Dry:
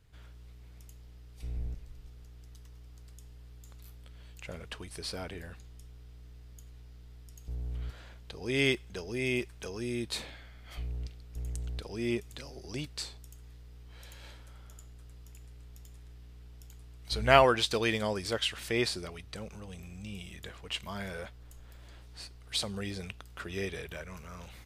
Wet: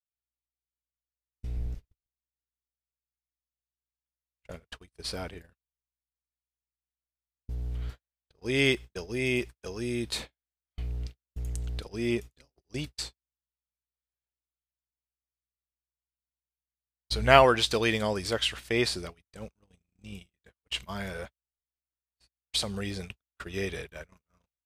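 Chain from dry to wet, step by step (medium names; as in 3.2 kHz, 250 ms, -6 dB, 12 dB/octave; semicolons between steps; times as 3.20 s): gate -40 dBFS, range -55 dB; trim +3 dB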